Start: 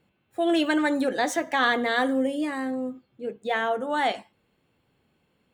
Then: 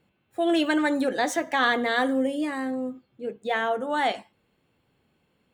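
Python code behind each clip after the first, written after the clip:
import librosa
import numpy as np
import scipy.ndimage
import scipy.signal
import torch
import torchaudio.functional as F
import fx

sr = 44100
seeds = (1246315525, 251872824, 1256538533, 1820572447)

y = x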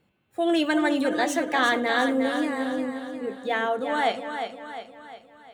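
y = fx.echo_feedback(x, sr, ms=355, feedback_pct=49, wet_db=-7.5)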